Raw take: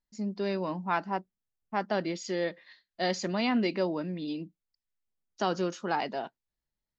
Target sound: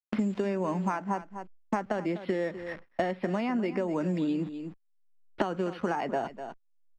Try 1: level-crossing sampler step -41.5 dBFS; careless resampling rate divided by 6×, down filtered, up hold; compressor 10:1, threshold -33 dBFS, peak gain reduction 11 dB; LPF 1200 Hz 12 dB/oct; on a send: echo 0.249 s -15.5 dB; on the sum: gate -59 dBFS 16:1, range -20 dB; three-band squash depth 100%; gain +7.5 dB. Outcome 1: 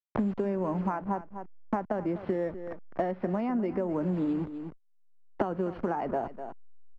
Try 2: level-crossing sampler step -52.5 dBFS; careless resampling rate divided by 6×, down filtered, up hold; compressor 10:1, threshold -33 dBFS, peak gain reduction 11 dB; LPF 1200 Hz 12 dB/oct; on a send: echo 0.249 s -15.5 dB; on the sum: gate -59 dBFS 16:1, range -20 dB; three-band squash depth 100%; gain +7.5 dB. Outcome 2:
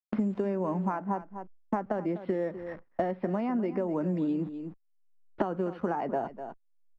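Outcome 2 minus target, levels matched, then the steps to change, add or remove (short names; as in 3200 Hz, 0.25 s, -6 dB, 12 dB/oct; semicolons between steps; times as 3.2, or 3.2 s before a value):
2000 Hz band -6.0 dB
change: LPF 2700 Hz 12 dB/oct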